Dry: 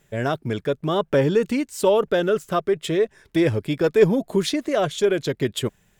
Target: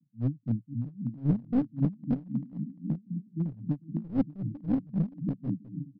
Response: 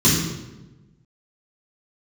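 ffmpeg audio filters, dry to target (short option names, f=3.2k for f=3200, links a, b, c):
-af "asuperpass=centerf=180:order=20:qfactor=1,equalizer=f=220:t=o:w=1.3:g=-3,aecho=1:1:580|928|1137|1262|1337:0.631|0.398|0.251|0.158|0.1,aresample=11025,aeval=exprs='clip(val(0),-1,0.0473)':c=same,aresample=44100,aeval=exprs='val(0)*pow(10,-24*(0.5-0.5*cos(2*PI*3.8*n/s))/20)':c=same,volume=4.5dB"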